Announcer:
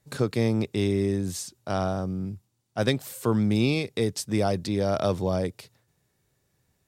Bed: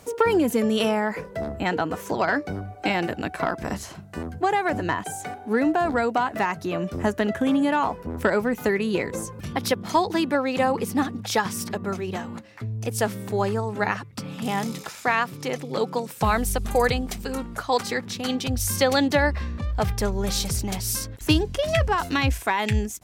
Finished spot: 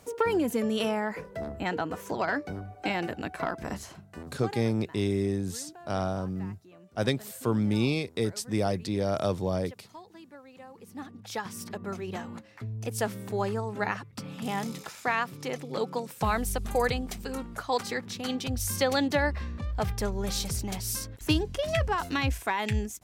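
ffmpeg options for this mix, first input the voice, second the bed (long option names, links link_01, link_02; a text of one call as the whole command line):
ffmpeg -i stem1.wav -i stem2.wav -filter_complex "[0:a]adelay=4200,volume=-3dB[link_01];[1:a]volume=15dB,afade=type=out:start_time=3.83:duration=0.86:silence=0.0944061,afade=type=in:start_time=10.74:duration=1.45:silence=0.0891251[link_02];[link_01][link_02]amix=inputs=2:normalize=0" out.wav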